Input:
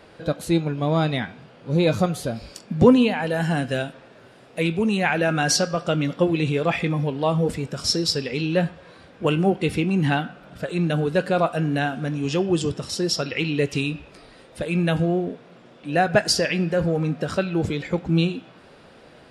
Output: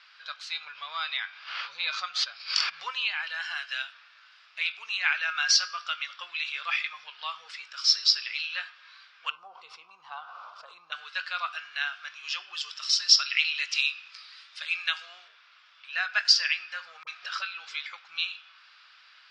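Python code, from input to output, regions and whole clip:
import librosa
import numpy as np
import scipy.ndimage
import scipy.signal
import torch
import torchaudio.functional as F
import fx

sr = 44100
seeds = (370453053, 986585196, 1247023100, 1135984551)

y = fx.chain(x, sr, fx.lowpass(hz=6100.0, slope=12),
    fx.low_shelf(hz=260.0, db=5.5),
    fx.pre_swell(db_per_s=54.0), at=(0.59, 2.83))
y = fx.chain(y, sr, fx.curve_eq(hz=(1100.0, 1700.0, 5800.0), db=(0, -29, -20)),
    fx.env_flatten(amount_pct=70), at=(9.3, 10.92))
y = fx.chain(y, sr, fx.highpass(hz=360.0, slope=12),
    fx.high_shelf(hz=4200.0, db=10.0), at=(12.69, 15.28))
y = fx.chain(y, sr, fx.dispersion(late='highs', ms=40.0, hz=470.0),
    fx.resample_bad(factor=2, down='filtered', up='hold'),
    fx.band_squash(depth_pct=70), at=(17.03, 17.86))
y = scipy.signal.sosfilt(scipy.signal.ellip(3, 1.0, 60, [1200.0, 5200.0], 'bandpass', fs=sr, output='sos'), y)
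y = fx.high_shelf(y, sr, hz=2600.0, db=8.0)
y = fx.notch(y, sr, hz=1900.0, q=29.0)
y = F.gain(torch.from_numpy(y), -3.0).numpy()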